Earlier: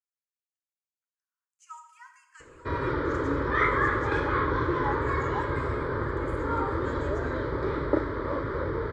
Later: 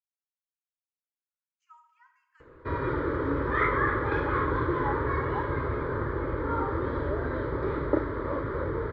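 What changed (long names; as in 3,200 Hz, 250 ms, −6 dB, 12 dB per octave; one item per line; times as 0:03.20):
speech −9.0 dB
master: add high-frequency loss of the air 230 metres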